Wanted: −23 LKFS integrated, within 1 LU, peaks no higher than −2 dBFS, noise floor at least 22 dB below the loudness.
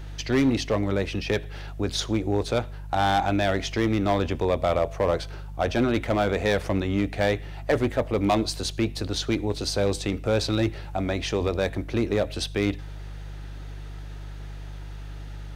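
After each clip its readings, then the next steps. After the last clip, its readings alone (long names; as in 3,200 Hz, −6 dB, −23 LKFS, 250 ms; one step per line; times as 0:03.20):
share of clipped samples 1.1%; peaks flattened at −15.5 dBFS; mains hum 50 Hz; hum harmonics up to 150 Hz; level of the hum −34 dBFS; integrated loudness −25.5 LKFS; sample peak −15.5 dBFS; target loudness −23.0 LKFS
→ clipped peaks rebuilt −15.5 dBFS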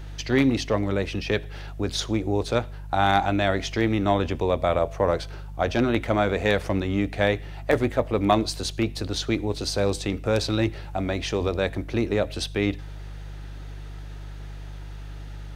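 share of clipped samples 0.0%; mains hum 50 Hz; hum harmonics up to 150 Hz; level of the hum −34 dBFS
→ hum removal 50 Hz, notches 3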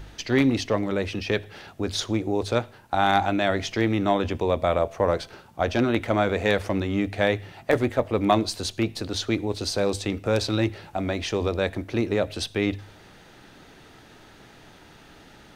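mains hum none found; integrated loudness −25.0 LKFS; sample peak −6.5 dBFS; target loudness −23.0 LKFS
→ level +2 dB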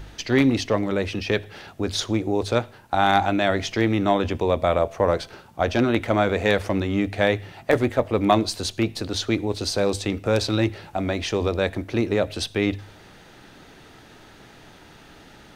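integrated loudness −23.0 LKFS; sample peak −4.5 dBFS; background noise floor −48 dBFS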